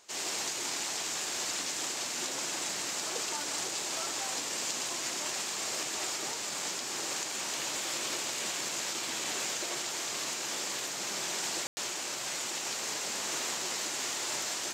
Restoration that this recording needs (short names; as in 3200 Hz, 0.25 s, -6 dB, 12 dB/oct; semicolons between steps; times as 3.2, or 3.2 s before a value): room tone fill 11.67–11.77